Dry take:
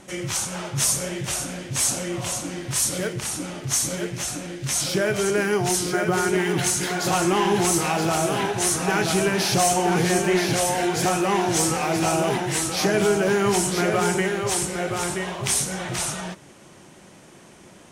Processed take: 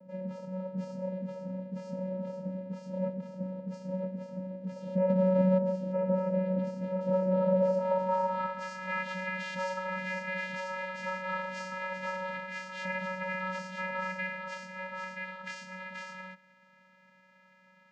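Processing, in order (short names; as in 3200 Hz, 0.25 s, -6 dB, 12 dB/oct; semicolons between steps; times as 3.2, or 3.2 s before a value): 5.09–5.58 half-waves squared off; vocoder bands 8, square 186 Hz; band-pass sweep 420 Hz -> 1800 Hz, 7.38–8.87; gain +4.5 dB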